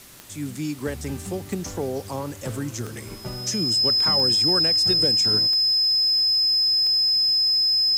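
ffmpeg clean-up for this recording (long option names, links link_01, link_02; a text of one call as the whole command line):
ffmpeg -i in.wav -af "adeclick=threshold=4,bandreject=frequency=5100:width=30,afwtdn=0.005" out.wav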